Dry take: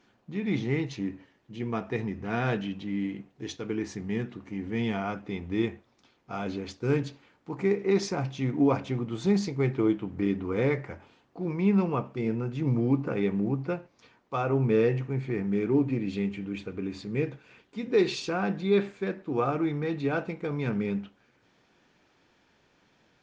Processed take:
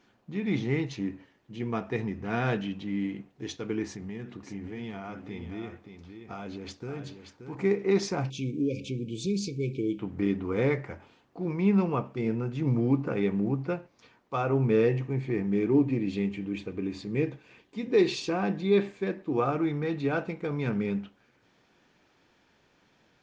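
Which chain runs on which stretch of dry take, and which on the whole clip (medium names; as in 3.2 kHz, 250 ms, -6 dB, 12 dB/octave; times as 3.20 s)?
3.85–7.55 s: compression 4:1, threshold -35 dBFS + delay 578 ms -8.5 dB
8.30–9.99 s: treble shelf 4.8 kHz +9 dB + compression 1.5:1, threshold -33 dBFS + brick-wall FIR band-stop 550–2200 Hz
14.86–19.40 s: peaking EQ 320 Hz +4 dB 0.26 oct + band-stop 1.4 kHz, Q 6.7
whole clip: none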